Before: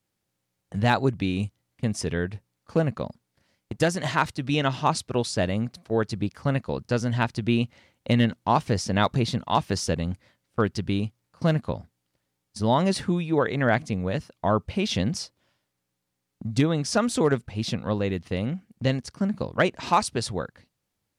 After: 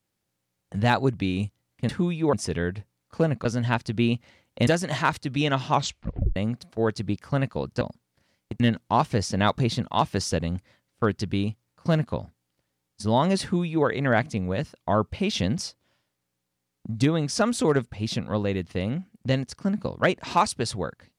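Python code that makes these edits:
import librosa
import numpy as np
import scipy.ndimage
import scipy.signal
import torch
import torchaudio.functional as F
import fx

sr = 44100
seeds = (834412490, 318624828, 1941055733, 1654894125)

y = fx.edit(x, sr, fx.swap(start_s=3.01, length_s=0.79, other_s=6.94, other_length_s=1.22),
    fx.tape_stop(start_s=4.85, length_s=0.64),
    fx.duplicate(start_s=12.98, length_s=0.44, to_s=1.89), tone=tone)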